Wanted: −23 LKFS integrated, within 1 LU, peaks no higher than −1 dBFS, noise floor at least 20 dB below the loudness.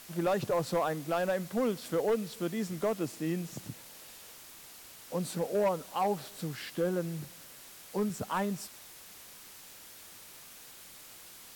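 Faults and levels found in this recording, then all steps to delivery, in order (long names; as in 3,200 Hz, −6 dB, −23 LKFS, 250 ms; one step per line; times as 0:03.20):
share of clipped samples 0.8%; peaks flattened at −23.0 dBFS; background noise floor −51 dBFS; target noise floor −53 dBFS; integrated loudness −33.0 LKFS; sample peak −23.0 dBFS; target loudness −23.0 LKFS
→ clipped peaks rebuilt −23 dBFS
broadband denoise 6 dB, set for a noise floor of −51 dBFS
level +10 dB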